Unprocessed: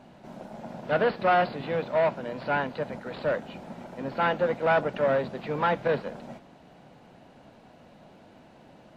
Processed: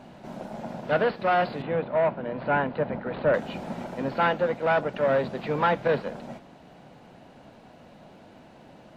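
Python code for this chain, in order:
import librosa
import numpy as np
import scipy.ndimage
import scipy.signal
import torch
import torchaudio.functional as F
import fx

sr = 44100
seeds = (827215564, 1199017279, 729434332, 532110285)

y = fx.rider(x, sr, range_db=5, speed_s=0.5)
y = fx.air_absorb(y, sr, metres=390.0, at=(1.62, 3.34))
y = y * librosa.db_to_amplitude(2.0)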